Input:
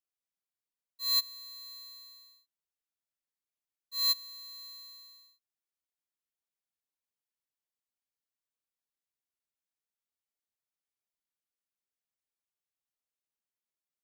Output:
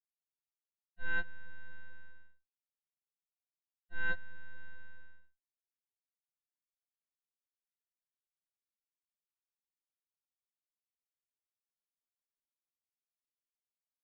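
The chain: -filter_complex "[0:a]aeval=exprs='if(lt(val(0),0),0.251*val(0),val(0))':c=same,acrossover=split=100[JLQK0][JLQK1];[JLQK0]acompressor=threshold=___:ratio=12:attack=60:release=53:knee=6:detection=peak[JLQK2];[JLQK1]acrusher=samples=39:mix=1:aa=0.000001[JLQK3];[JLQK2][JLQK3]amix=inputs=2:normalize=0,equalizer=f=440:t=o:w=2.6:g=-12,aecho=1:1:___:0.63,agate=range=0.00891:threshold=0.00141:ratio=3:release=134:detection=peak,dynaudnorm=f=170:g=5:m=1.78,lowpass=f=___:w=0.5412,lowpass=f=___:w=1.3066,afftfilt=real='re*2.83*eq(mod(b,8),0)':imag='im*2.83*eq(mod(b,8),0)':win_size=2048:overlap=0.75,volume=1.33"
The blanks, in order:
0.00398, 3.7, 2500, 2500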